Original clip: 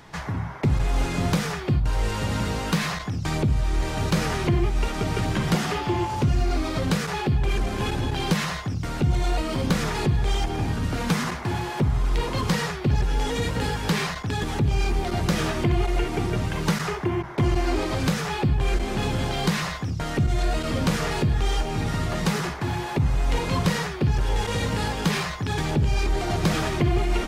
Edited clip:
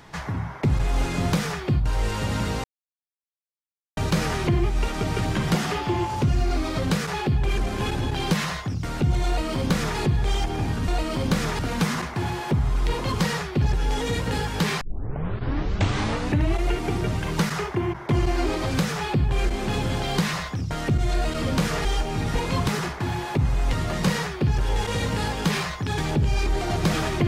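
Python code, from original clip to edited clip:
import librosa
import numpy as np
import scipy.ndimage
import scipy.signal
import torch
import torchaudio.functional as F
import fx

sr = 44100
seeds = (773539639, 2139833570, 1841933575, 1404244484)

y = fx.edit(x, sr, fx.silence(start_s=2.64, length_s=1.33),
    fx.duplicate(start_s=9.27, length_s=0.71, to_s=10.88),
    fx.tape_start(start_s=14.1, length_s=1.83),
    fx.cut(start_s=21.14, length_s=0.31),
    fx.swap(start_s=21.95, length_s=0.34, other_s=23.34, other_length_s=0.33), tone=tone)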